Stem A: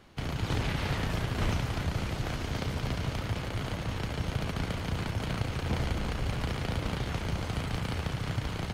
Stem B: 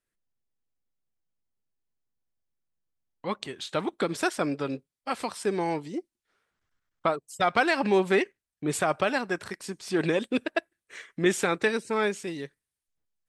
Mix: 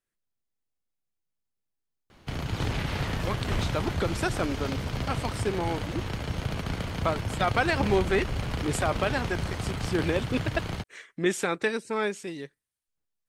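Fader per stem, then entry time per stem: +1.0 dB, -2.0 dB; 2.10 s, 0.00 s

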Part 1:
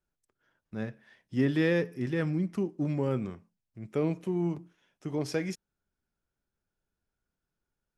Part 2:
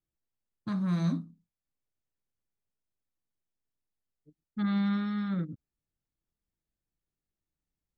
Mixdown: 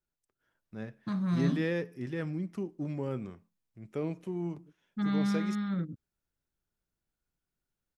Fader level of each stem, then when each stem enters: -5.5 dB, -1.0 dB; 0.00 s, 0.40 s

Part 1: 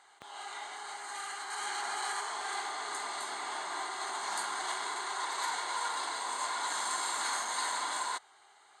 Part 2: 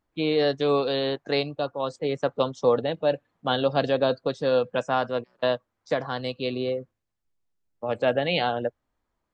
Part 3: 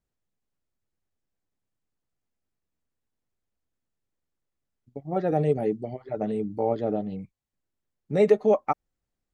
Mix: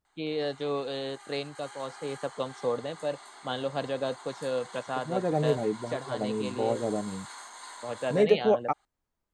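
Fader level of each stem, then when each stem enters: -11.0 dB, -8.5 dB, -3.0 dB; 0.05 s, 0.00 s, 0.00 s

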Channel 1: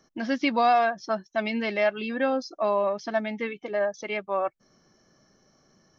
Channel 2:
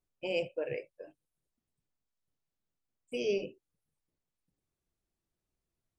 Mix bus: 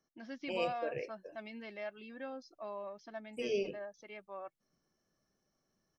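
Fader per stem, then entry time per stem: -19.0 dB, -3.0 dB; 0.00 s, 0.25 s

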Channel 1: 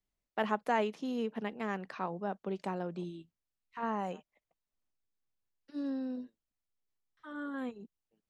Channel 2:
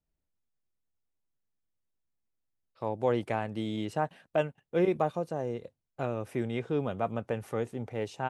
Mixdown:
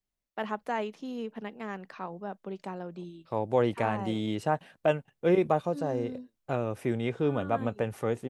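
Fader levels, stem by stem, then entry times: -1.5 dB, +2.5 dB; 0.00 s, 0.50 s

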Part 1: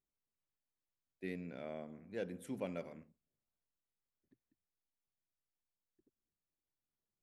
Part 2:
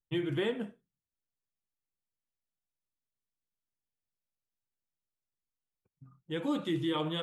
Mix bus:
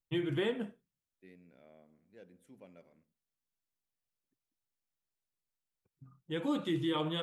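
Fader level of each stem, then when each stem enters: -14.5 dB, -1.0 dB; 0.00 s, 0.00 s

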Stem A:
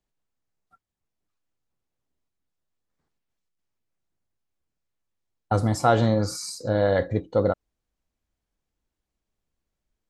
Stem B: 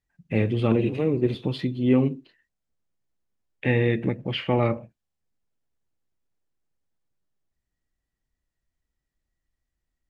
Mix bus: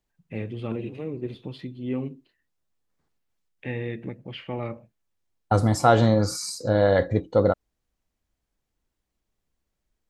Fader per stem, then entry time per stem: +2.0 dB, -9.5 dB; 0.00 s, 0.00 s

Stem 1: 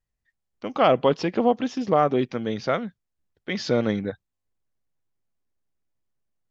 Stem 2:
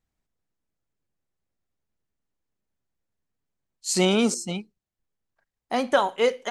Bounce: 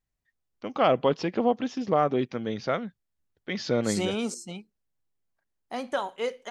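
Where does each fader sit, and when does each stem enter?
-3.5 dB, -8.5 dB; 0.00 s, 0.00 s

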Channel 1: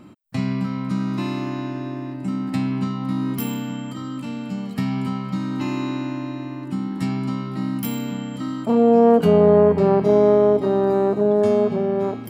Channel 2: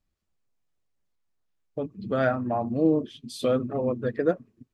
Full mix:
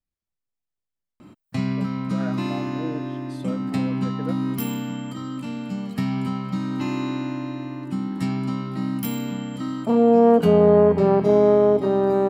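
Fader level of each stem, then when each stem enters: -1.0 dB, -11.0 dB; 1.20 s, 0.00 s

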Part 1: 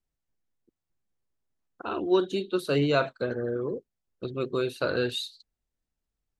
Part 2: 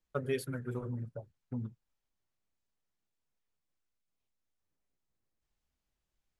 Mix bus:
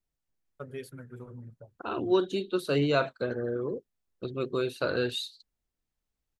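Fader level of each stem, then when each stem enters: -1.5 dB, -6.5 dB; 0.00 s, 0.45 s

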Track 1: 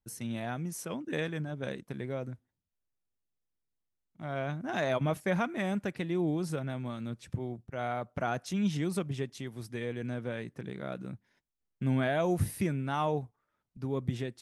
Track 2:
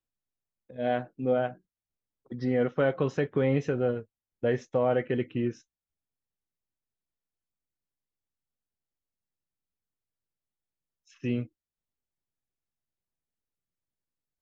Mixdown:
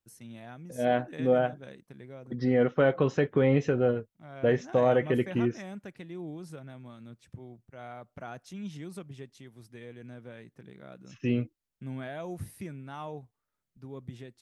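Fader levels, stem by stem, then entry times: -9.5 dB, +2.0 dB; 0.00 s, 0.00 s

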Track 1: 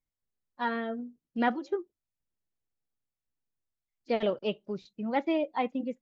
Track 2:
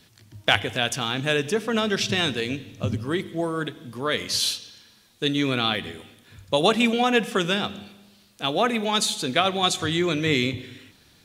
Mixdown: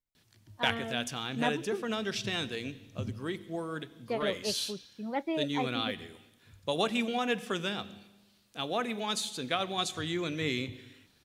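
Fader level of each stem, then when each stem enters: -4.5 dB, -10.0 dB; 0.00 s, 0.15 s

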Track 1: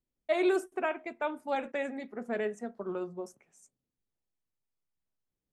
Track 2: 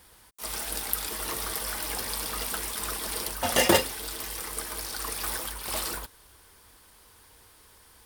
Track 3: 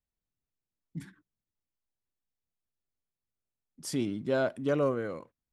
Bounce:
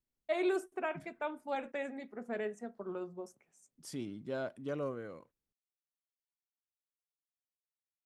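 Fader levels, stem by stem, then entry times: -5.0 dB, mute, -10.0 dB; 0.00 s, mute, 0.00 s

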